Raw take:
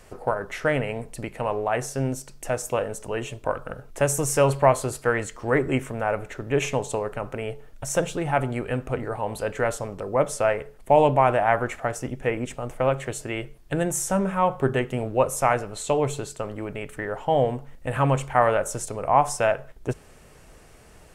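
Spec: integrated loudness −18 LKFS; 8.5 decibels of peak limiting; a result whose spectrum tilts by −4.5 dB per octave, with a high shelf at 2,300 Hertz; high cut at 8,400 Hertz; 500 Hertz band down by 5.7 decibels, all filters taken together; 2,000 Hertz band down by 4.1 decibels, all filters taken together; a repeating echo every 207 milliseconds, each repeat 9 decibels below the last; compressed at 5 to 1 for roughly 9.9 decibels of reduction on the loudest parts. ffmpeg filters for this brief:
ffmpeg -i in.wav -af "lowpass=8400,equalizer=frequency=500:width_type=o:gain=-7,equalizer=frequency=2000:width_type=o:gain=-6.5,highshelf=frequency=2300:gain=3,acompressor=threshold=-27dB:ratio=5,alimiter=limit=-23dB:level=0:latency=1,aecho=1:1:207|414|621|828:0.355|0.124|0.0435|0.0152,volume=16.5dB" out.wav

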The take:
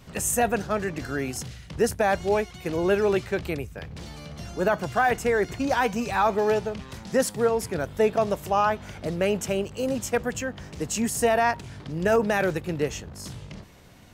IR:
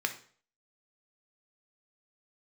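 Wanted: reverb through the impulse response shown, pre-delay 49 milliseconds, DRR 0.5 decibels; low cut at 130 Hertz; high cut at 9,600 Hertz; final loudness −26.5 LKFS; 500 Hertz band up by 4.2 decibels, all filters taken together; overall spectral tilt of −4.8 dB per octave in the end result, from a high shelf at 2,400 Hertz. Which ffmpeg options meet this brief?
-filter_complex "[0:a]highpass=130,lowpass=9600,equalizer=frequency=500:width_type=o:gain=5.5,highshelf=frequency=2400:gain=-6,asplit=2[link_01][link_02];[1:a]atrim=start_sample=2205,adelay=49[link_03];[link_02][link_03]afir=irnorm=-1:irlink=0,volume=-6.5dB[link_04];[link_01][link_04]amix=inputs=2:normalize=0,volume=-5dB"

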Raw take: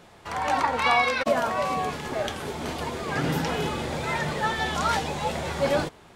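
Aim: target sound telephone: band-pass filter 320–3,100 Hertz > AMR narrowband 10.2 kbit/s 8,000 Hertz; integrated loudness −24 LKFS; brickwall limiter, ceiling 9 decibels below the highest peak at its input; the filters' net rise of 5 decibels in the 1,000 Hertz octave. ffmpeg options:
ffmpeg -i in.wav -af "equalizer=frequency=1000:width_type=o:gain=6.5,alimiter=limit=-15dB:level=0:latency=1,highpass=320,lowpass=3100,volume=3dB" -ar 8000 -c:a libopencore_amrnb -b:a 10200 out.amr

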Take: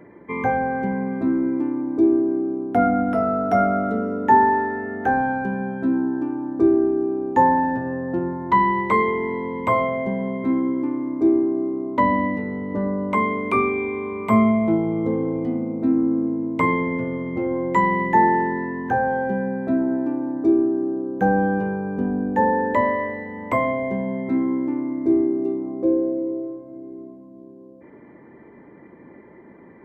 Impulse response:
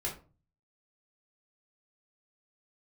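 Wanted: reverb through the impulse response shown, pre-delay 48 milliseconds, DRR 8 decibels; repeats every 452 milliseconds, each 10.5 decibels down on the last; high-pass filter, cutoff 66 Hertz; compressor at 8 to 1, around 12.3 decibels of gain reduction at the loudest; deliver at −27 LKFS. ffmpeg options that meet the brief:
-filter_complex "[0:a]highpass=66,acompressor=threshold=-25dB:ratio=8,aecho=1:1:452|904|1356:0.299|0.0896|0.0269,asplit=2[link_01][link_02];[1:a]atrim=start_sample=2205,adelay=48[link_03];[link_02][link_03]afir=irnorm=-1:irlink=0,volume=-11dB[link_04];[link_01][link_04]amix=inputs=2:normalize=0,volume=1dB"

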